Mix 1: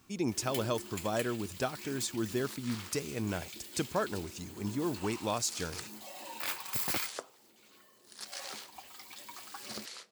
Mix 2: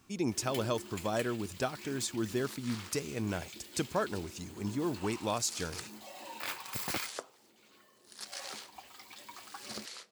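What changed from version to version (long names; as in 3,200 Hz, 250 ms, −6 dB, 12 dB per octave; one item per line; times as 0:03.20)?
first sound: add high-shelf EQ 6,400 Hz −6.5 dB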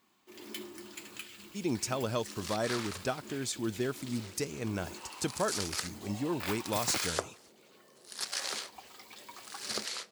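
speech: entry +1.45 s
second sound +8.0 dB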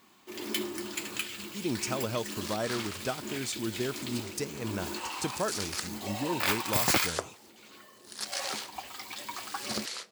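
first sound +10.0 dB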